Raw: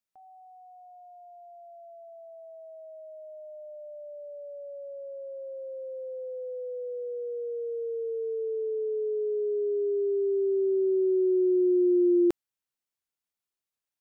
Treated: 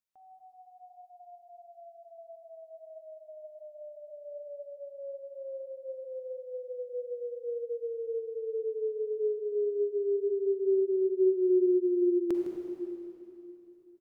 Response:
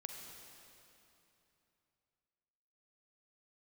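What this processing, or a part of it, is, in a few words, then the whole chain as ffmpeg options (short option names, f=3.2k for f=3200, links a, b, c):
cave: -filter_complex "[0:a]aecho=1:1:158:0.237[a];[1:a]atrim=start_sample=2205[b];[a][b]afir=irnorm=-1:irlink=0"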